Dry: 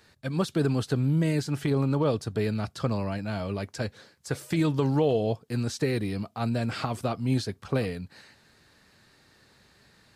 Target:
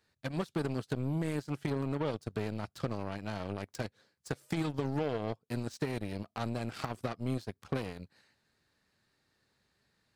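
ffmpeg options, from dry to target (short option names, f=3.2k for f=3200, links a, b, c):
-af "acompressor=threshold=-34dB:ratio=2.5,aeval=exprs='0.0891*(cos(1*acos(clip(val(0)/0.0891,-1,1)))-cos(1*PI/2))+0.000708*(cos(5*acos(clip(val(0)/0.0891,-1,1)))-cos(5*PI/2))+0.0112*(cos(7*acos(clip(val(0)/0.0891,-1,1)))-cos(7*PI/2))':c=same"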